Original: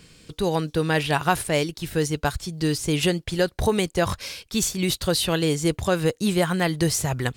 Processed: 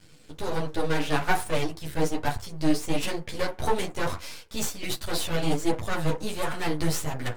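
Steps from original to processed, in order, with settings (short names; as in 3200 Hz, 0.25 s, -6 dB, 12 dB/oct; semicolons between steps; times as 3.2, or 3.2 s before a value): FDN reverb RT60 0.3 s, low-frequency decay 0.75×, high-frequency decay 0.4×, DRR 1.5 dB; half-wave rectifier; chorus voices 2, 1.3 Hz, delay 11 ms, depth 3 ms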